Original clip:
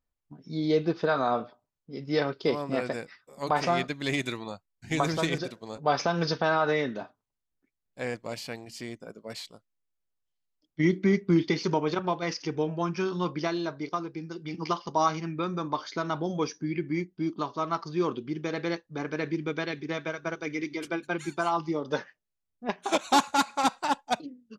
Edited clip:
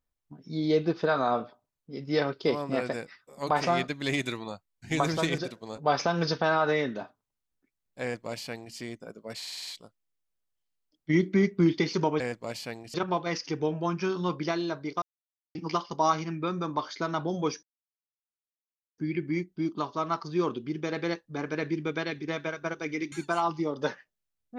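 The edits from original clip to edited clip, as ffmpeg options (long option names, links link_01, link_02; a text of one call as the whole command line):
ffmpeg -i in.wav -filter_complex "[0:a]asplit=13[link_01][link_02][link_03][link_04][link_05][link_06][link_07][link_08][link_09][link_10][link_11][link_12][link_13];[link_01]atrim=end=9.422[link_14];[link_02]atrim=start=9.368:end=9.422[link_15];[link_03]atrim=start=9.368:end=9.422[link_16];[link_04]atrim=start=9.368:end=9.422[link_17];[link_05]atrim=start=9.368:end=9.422[link_18];[link_06]atrim=start=9.368:end=9.422[link_19];[link_07]atrim=start=9.368:end=11.902[link_20];[link_08]atrim=start=8.018:end=8.762[link_21];[link_09]atrim=start=11.898:end=13.98,asetpts=PTS-STARTPTS,afade=type=out:start_time=2.078:duration=0.004:curve=hsin[link_22];[link_10]atrim=start=13.98:end=14.51,asetpts=PTS-STARTPTS,volume=0[link_23];[link_11]atrim=start=14.51:end=16.59,asetpts=PTS-STARTPTS,afade=type=in:duration=0.004:curve=hsin,afade=type=out:start_time=2.076:duration=0.004:curve=hsin,apad=pad_dur=1.35[link_24];[link_12]atrim=start=16.59:end=20.732,asetpts=PTS-STARTPTS,afade=type=in:duration=0.004:curve=hsin[link_25];[link_13]atrim=start=21.208[link_26];[link_14][link_15]acrossfade=duration=0.004:curve1=hsin:curve2=hsin[link_27];[link_27][link_16]acrossfade=duration=0.004:curve1=hsin:curve2=hsin[link_28];[link_28][link_17]acrossfade=duration=0.004:curve1=hsin:curve2=hsin[link_29];[link_29][link_18]acrossfade=duration=0.004:curve1=hsin:curve2=hsin[link_30];[link_30][link_19]acrossfade=duration=0.004:curve1=hsin:curve2=hsin[link_31];[link_31][link_20]acrossfade=duration=0.004:curve1=hsin:curve2=hsin[link_32];[link_32][link_21]acrossfade=duration=0.004:curve1=hsin:curve2=hsin[link_33];[link_22][link_23][link_24][link_25]concat=n=4:v=0:a=1[link_34];[link_33][link_34]acrossfade=duration=0.004:curve1=hsin:curve2=hsin[link_35];[link_35][link_26]acrossfade=duration=0.004:curve1=hsin:curve2=hsin" out.wav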